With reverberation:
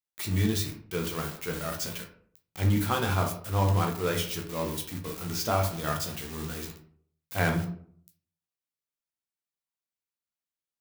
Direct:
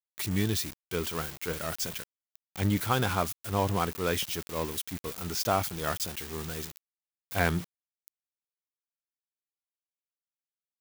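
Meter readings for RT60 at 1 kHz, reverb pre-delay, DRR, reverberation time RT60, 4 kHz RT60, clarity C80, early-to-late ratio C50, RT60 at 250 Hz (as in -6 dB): 0.55 s, 9 ms, 2.0 dB, 0.55 s, 0.30 s, 13.0 dB, 8.0 dB, 0.70 s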